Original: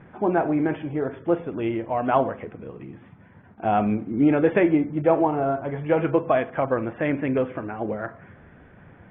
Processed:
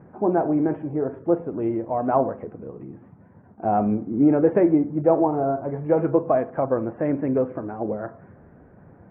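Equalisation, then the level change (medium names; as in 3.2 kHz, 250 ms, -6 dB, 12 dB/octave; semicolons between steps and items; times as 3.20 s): band-pass filter 810 Hz, Q 0.61; distance through air 430 m; tilt EQ -4 dB/octave; 0.0 dB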